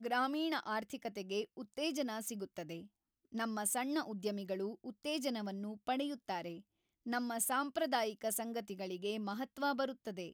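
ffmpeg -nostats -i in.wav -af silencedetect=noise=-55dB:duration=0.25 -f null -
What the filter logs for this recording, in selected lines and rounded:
silence_start: 2.87
silence_end: 3.32 | silence_duration: 0.46
silence_start: 6.61
silence_end: 7.06 | silence_duration: 0.45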